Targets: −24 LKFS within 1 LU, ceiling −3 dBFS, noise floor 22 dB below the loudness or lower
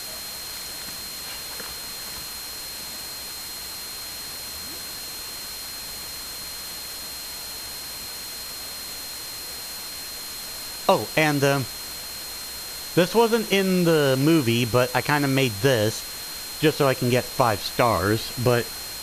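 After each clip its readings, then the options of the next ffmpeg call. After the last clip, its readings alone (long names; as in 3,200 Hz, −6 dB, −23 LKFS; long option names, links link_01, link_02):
interfering tone 4,200 Hz; level of the tone −36 dBFS; background noise floor −35 dBFS; target noise floor −47 dBFS; integrated loudness −25.0 LKFS; sample peak −5.0 dBFS; target loudness −24.0 LKFS
→ -af "bandreject=frequency=4200:width=30"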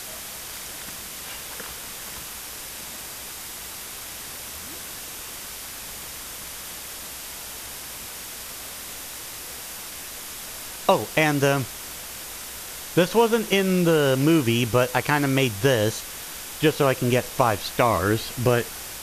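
interfering tone none found; background noise floor −37 dBFS; target noise floor −48 dBFS
→ -af "afftdn=noise_reduction=11:noise_floor=-37"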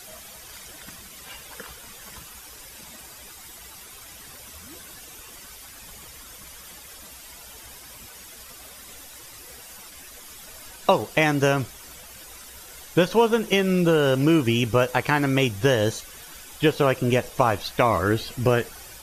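background noise floor −44 dBFS; integrated loudness −22.0 LKFS; sample peak −5.0 dBFS; target loudness −24.0 LKFS
→ -af "volume=-2dB"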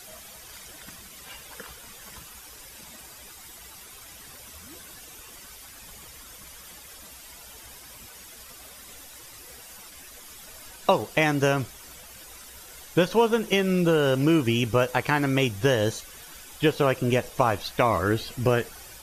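integrated loudness −24.0 LKFS; sample peak −7.0 dBFS; background noise floor −46 dBFS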